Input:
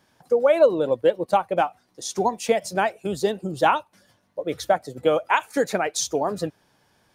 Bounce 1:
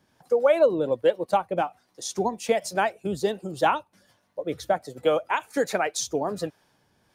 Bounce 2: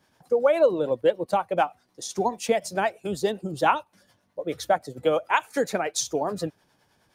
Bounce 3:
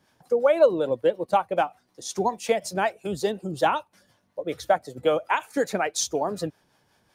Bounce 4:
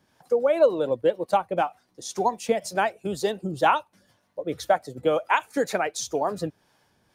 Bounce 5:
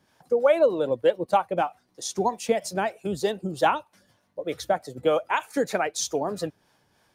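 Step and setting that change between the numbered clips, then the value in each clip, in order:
harmonic tremolo, rate: 1.3 Hz, 9.6 Hz, 5.4 Hz, 2 Hz, 3.2 Hz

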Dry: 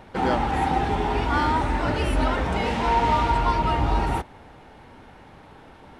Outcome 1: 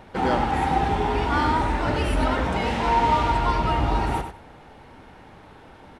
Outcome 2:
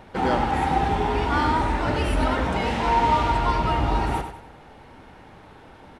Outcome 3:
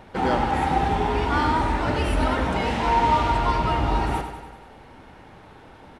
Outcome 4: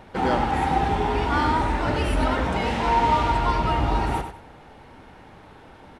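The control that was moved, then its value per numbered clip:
feedback delay, feedback: 16%, 37%, 60%, 25%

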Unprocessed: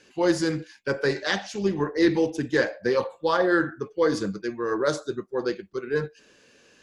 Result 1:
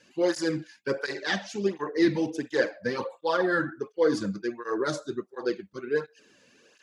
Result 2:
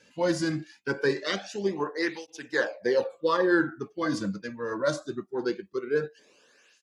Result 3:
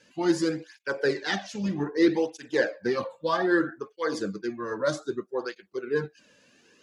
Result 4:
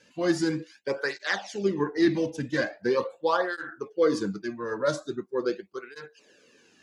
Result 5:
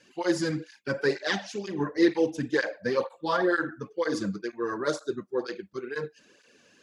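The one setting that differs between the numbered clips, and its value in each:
cancelling through-zero flanger, nulls at: 1.4 Hz, 0.22 Hz, 0.63 Hz, 0.42 Hz, 2.1 Hz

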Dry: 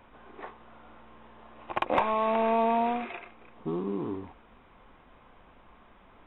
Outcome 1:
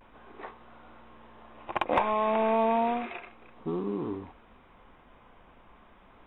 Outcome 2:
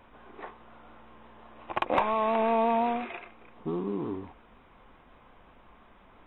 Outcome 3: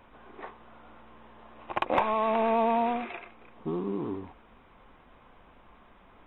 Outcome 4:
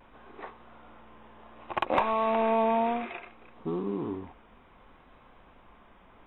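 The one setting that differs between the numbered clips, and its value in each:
vibrato, rate: 0.33 Hz, 5.7 Hz, 9.4 Hz, 0.63 Hz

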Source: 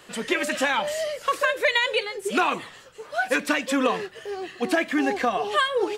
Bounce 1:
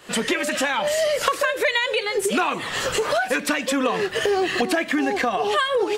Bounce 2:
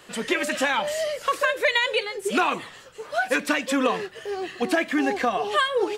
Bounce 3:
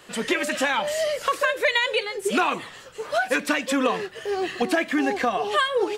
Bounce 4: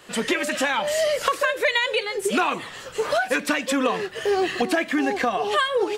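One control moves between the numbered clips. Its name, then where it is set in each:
recorder AGC, rising by: 87 dB/s, 5.2 dB/s, 14 dB/s, 35 dB/s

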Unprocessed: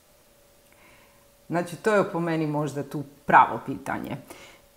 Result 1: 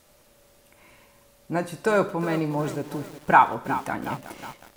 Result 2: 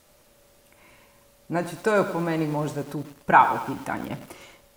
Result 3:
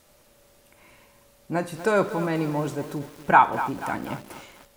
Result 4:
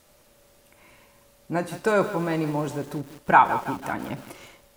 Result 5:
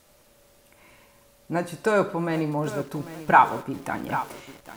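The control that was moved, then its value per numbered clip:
bit-crushed delay, time: 364 ms, 106 ms, 242 ms, 164 ms, 794 ms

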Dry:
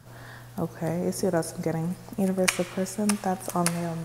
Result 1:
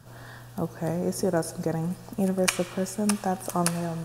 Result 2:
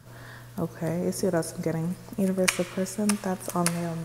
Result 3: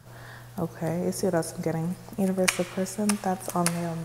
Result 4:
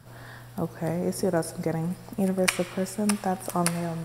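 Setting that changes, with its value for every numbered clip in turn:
band-stop, frequency: 2.1 kHz, 770 Hz, 260 Hz, 6.5 kHz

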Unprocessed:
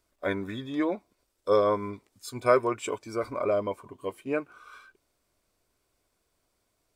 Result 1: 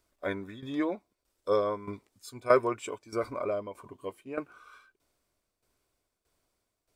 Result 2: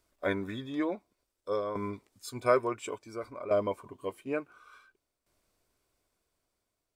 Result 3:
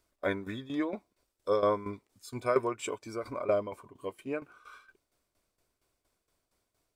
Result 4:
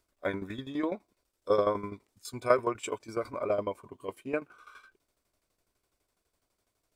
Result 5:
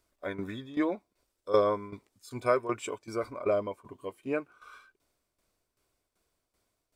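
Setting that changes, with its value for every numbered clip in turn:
tremolo, rate: 1.6 Hz, 0.57 Hz, 4.3 Hz, 12 Hz, 2.6 Hz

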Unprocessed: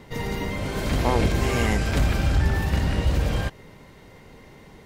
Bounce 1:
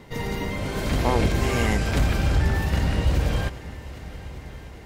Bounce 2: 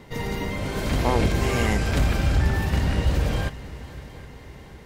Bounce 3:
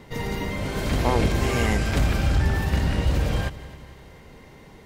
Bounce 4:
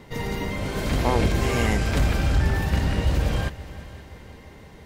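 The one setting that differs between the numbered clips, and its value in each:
multi-head delay, time: 400 ms, 256 ms, 89 ms, 174 ms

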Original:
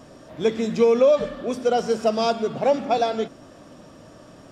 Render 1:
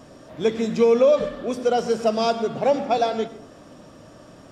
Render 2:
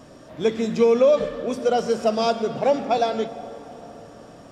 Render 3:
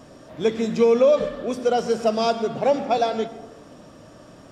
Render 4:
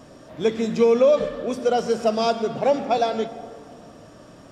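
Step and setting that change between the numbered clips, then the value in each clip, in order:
plate-style reverb, RT60: 0.5 s, 5 s, 1.1 s, 2.3 s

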